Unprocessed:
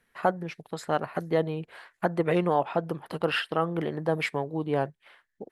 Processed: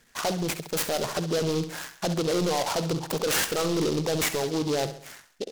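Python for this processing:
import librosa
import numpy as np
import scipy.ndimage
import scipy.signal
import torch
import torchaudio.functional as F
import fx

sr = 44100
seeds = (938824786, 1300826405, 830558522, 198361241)

p1 = fx.envelope_sharpen(x, sr, power=1.5)
p2 = fx.over_compress(p1, sr, threshold_db=-30.0, ratio=-1.0)
p3 = p1 + (p2 * librosa.db_to_amplitude(0.0))
p4 = fx.lowpass_res(p3, sr, hz=4600.0, q=11.0)
p5 = np.clip(p4, -10.0 ** (-22.5 / 20.0), 10.0 ** (-22.5 / 20.0))
p6 = p5 + fx.echo_feedback(p5, sr, ms=67, feedback_pct=45, wet_db=-11, dry=0)
y = fx.noise_mod_delay(p6, sr, seeds[0], noise_hz=4100.0, depth_ms=0.088)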